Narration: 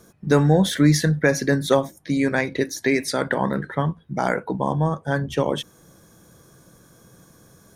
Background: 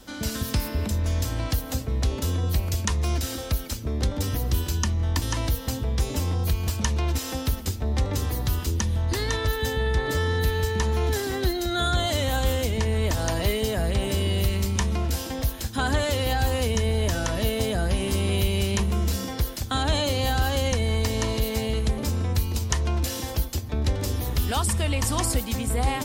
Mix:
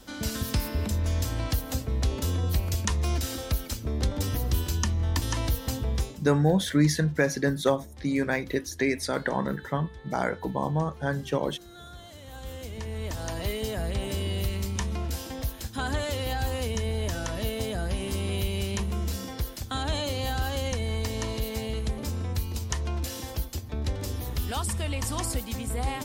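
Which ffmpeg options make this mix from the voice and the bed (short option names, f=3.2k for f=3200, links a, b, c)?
-filter_complex "[0:a]adelay=5950,volume=-5.5dB[a];[1:a]volume=14.5dB,afade=t=out:st=5.95:d=0.23:silence=0.1,afade=t=in:st=12.21:d=1.47:silence=0.149624[b];[a][b]amix=inputs=2:normalize=0"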